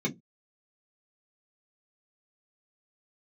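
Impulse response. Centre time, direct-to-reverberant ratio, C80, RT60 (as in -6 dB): 11 ms, -2.0 dB, 31.0 dB, 0.15 s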